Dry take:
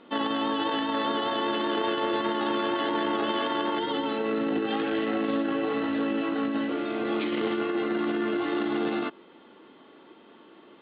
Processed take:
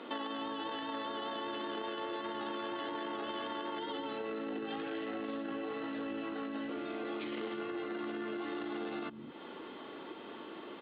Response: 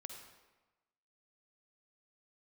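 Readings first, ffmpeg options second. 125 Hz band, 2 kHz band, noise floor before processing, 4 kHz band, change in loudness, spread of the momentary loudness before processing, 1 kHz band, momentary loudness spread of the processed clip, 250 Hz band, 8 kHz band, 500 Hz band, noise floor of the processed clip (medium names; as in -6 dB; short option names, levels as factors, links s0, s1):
-12.0 dB, -10.5 dB, -53 dBFS, -10.5 dB, -12.0 dB, 2 LU, -11.0 dB, 8 LU, -12.0 dB, no reading, -11.0 dB, -48 dBFS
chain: -filter_complex "[0:a]acrossover=split=200[s0][s1];[s0]adelay=210[s2];[s2][s1]amix=inputs=2:normalize=0,acompressor=threshold=0.00447:ratio=4,volume=2.11"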